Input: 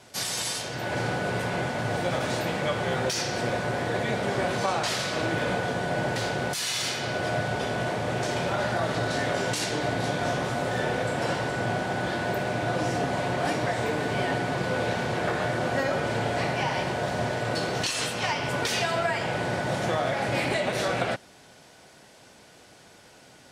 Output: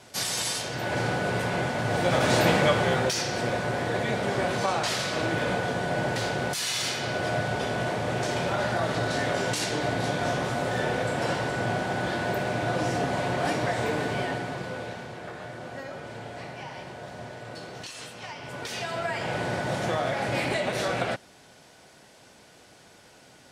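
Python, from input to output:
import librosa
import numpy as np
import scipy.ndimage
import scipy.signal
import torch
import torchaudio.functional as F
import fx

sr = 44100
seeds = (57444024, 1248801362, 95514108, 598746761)

y = fx.gain(x, sr, db=fx.line((1.86, 1.0), (2.48, 8.0), (3.2, 0.0), (14.0, 0.0), (15.17, -12.0), (18.31, -12.0), (19.33, -1.0)))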